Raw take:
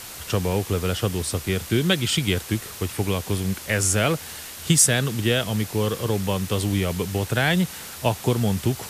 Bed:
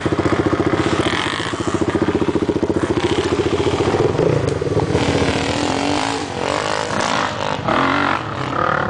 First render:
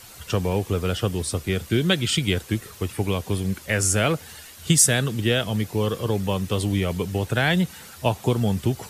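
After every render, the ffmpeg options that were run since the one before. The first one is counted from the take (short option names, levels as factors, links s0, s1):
-af "afftdn=nr=9:nf=-38"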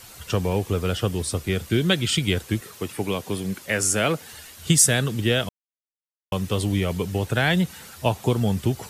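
-filter_complex "[0:a]asettb=1/sr,asplit=3[s0][s1][s2];[s0]atrim=end=2.614[s3];[s1]atrim=start=2.61:end=4.33,asetpts=PTS-STARTPTS,afade=t=in:d=0.004:c=qsin,afade=t=out:st=1.716:d=0.004:c=qsin,highpass=150[s4];[s2]atrim=start=4.326[s5];[s3][s4]acrossfade=d=0.004:c1=hsin:c2=qsin[s6];[s6][s5]acrossfade=d=0.004:c1=qsin:c2=hsin,asplit=3[s7][s8][s9];[s7]atrim=end=5.49,asetpts=PTS-STARTPTS,afade=t=out:st=5.486:d=0.004:c=hsin[s10];[s8]atrim=start=5.49:end=6.32,asetpts=PTS-STARTPTS,volume=0[s11];[s9]atrim=start=6.32,asetpts=PTS-STARTPTS,afade=t=in:d=0.004:c=hsin[s12];[s10][s11][s12]concat=n=3:v=0:a=1"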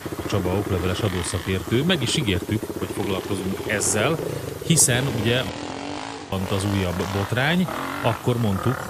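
-filter_complex "[1:a]volume=0.237[s0];[0:a][s0]amix=inputs=2:normalize=0"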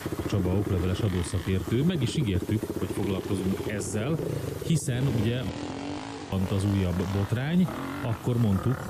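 -filter_complex "[0:a]alimiter=limit=0.188:level=0:latency=1:release=13,acrossover=split=370[s0][s1];[s1]acompressor=threshold=0.0126:ratio=3[s2];[s0][s2]amix=inputs=2:normalize=0"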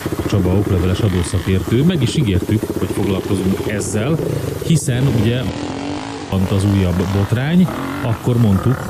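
-af "volume=3.55"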